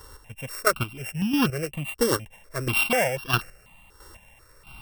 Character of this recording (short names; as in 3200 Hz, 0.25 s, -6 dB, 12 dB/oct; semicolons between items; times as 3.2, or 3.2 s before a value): a buzz of ramps at a fixed pitch in blocks of 16 samples; chopped level 1.5 Hz, depth 60%, duty 25%; notches that jump at a steady rate 4.1 Hz 680–2100 Hz